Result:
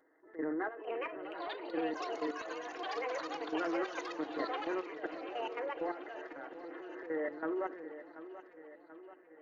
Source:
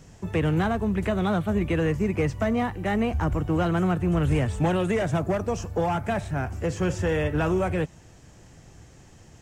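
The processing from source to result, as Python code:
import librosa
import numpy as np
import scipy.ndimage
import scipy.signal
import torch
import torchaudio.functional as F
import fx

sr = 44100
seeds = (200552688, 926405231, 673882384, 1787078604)

p1 = np.repeat(x[::8], 8)[:len(x)]
p2 = fx.brickwall_bandpass(p1, sr, low_hz=280.0, high_hz=2100.0)
p3 = fx.peak_eq(p2, sr, hz=870.0, db=-14.5, octaves=2.9)
p4 = fx.hum_notches(p3, sr, base_hz=50, count=9)
p5 = p4 + 0.53 * np.pad(p4, (int(6.3 * sr / 1000.0), 0))[:len(p4)]
p6 = fx.transient(p5, sr, attack_db=-11, sustain_db=8)
p7 = fx.level_steps(p6, sr, step_db=12)
p8 = p7 + fx.echo_single(p7, sr, ms=80, db=-23.5, dry=0)
p9 = fx.echo_pitch(p8, sr, ms=614, semitones=7, count=3, db_per_echo=-3.0)
p10 = fx.echo_feedback(p9, sr, ms=735, feedback_pct=60, wet_db=-13.5)
y = p10 * librosa.db_to_amplitude(1.0)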